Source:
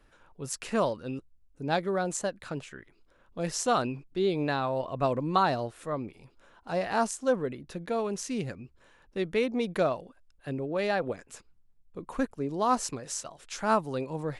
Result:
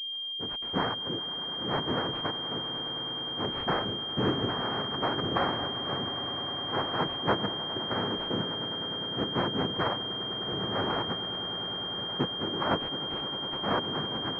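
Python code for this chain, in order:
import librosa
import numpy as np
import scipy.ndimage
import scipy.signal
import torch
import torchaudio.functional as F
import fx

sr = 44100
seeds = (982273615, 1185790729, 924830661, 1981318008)

y = fx.noise_vocoder(x, sr, seeds[0], bands=3)
y = fx.echo_swell(y, sr, ms=102, loudest=8, wet_db=-17.0)
y = fx.pwm(y, sr, carrier_hz=3200.0)
y = y * librosa.db_to_amplitude(-1.5)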